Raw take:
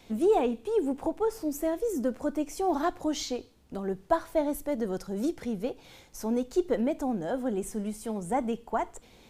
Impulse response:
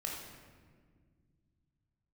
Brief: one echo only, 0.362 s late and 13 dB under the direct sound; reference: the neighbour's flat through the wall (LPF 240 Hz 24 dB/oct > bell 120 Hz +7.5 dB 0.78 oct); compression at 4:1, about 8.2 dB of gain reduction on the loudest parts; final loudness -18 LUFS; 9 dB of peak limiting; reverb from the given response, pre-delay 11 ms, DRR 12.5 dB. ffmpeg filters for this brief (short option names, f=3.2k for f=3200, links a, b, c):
-filter_complex "[0:a]acompressor=threshold=-29dB:ratio=4,alimiter=level_in=4dB:limit=-24dB:level=0:latency=1,volume=-4dB,aecho=1:1:362:0.224,asplit=2[a][b];[1:a]atrim=start_sample=2205,adelay=11[c];[b][c]afir=irnorm=-1:irlink=0,volume=-14dB[d];[a][d]amix=inputs=2:normalize=0,lowpass=f=240:w=0.5412,lowpass=f=240:w=1.3066,equalizer=f=120:t=o:w=0.78:g=7.5,volume=24dB"